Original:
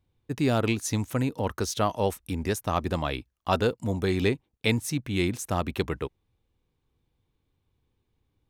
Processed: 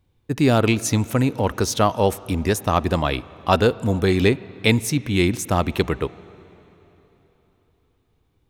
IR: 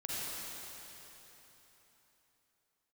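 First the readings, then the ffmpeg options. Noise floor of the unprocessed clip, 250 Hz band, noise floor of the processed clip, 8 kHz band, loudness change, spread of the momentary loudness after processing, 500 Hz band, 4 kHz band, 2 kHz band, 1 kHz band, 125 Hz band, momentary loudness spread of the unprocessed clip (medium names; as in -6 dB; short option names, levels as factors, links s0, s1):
-77 dBFS, +7.5 dB, -66 dBFS, +7.0 dB, +7.5 dB, 6 LU, +7.5 dB, +7.0 dB, +7.5 dB, +7.5 dB, +7.5 dB, 6 LU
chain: -filter_complex "[0:a]asplit=2[s0][s1];[1:a]atrim=start_sample=2205,lowpass=3900[s2];[s1][s2]afir=irnorm=-1:irlink=0,volume=0.0794[s3];[s0][s3]amix=inputs=2:normalize=0,volume=2.24"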